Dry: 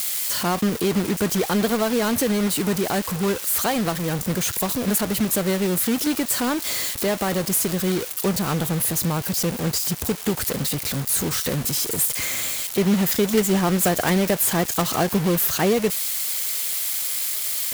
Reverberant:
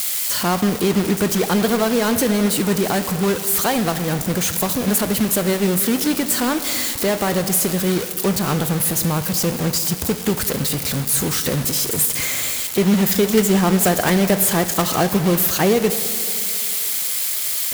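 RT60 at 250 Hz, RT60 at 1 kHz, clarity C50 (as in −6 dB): 2.8 s, 2.8 s, 11.0 dB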